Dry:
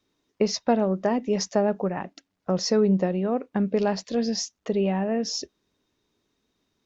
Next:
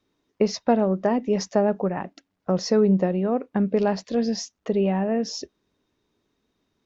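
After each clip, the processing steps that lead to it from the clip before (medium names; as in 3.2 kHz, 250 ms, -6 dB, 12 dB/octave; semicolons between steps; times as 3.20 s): treble shelf 3.3 kHz -7 dB; trim +2 dB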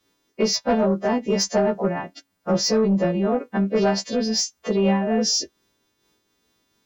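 partials quantised in pitch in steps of 2 st; saturation -14.5 dBFS, distortion -18 dB; random flutter of the level, depth 50%; trim +6 dB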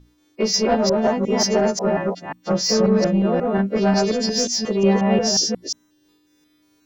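chunks repeated in reverse 179 ms, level -0.5 dB; hum 60 Hz, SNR 27 dB; hum notches 60/120/180/240 Hz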